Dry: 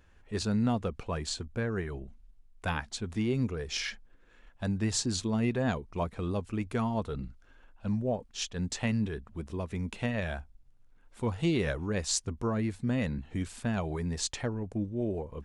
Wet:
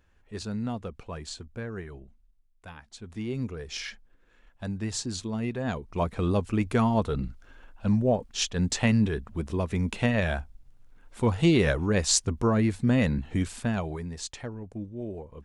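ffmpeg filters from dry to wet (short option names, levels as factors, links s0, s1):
-af "volume=7.08,afade=t=out:st=1.79:d=0.97:silence=0.316228,afade=t=in:st=2.76:d=0.62:silence=0.251189,afade=t=in:st=5.63:d=0.61:silence=0.354813,afade=t=out:st=13.31:d=0.79:silence=0.281838"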